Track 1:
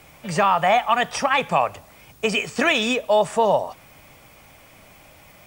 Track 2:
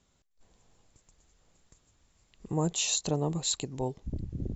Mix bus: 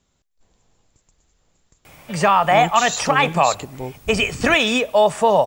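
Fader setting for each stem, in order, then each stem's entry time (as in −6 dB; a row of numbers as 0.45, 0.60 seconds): +3.0, +2.5 decibels; 1.85, 0.00 seconds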